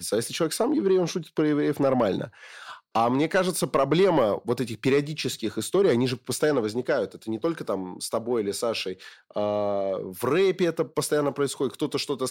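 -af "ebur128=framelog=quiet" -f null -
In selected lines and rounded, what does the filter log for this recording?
Integrated loudness:
  I:         -25.4 LUFS
  Threshold: -35.6 LUFS
Loudness range:
  LRA:         4.2 LU
  Threshold: -45.6 LUFS
  LRA low:   -28.3 LUFS
  LRA high:  -24.1 LUFS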